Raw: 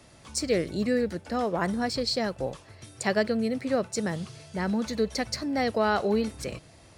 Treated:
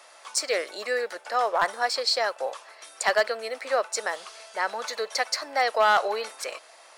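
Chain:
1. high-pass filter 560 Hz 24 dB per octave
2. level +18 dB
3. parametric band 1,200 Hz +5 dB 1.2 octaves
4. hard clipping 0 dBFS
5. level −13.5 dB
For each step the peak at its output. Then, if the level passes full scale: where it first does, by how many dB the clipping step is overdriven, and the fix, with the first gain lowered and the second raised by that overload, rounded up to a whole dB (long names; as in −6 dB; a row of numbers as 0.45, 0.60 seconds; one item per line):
−13.5, +4.5, +7.5, 0.0, −13.5 dBFS
step 2, 7.5 dB
step 2 +10 dB, step 5 −5.5 dB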